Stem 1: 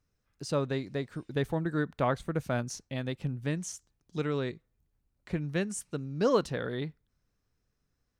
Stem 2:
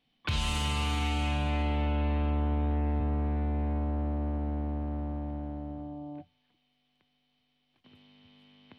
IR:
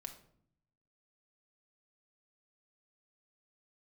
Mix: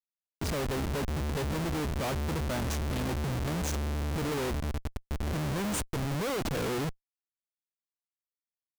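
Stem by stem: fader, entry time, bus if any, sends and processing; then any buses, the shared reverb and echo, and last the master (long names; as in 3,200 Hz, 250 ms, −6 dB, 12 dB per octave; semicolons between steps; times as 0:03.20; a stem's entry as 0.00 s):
+1.5 dB, 0.00 s, no send, high-pass filter 220 Hz 6 dB per octave; low-shelf EQ 350 Hz +7 dB; pitch vibrato 6.3 Hz 41 cents
+0.5 dB, 0.15 s, send −19.5 dB, high-shelf EQ 4,600 Hz −11 dB; decimation without filtering 35×; downward compressor 20 to 1, threshold −30 dBFS, peak gain reduction 5.5 dB; automatic ducking −9 dB, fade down 0.75 s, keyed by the first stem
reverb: on, RT60 0.65 s, pre-delay 4 ms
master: comparator with hysteresis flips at −37.5 dBFS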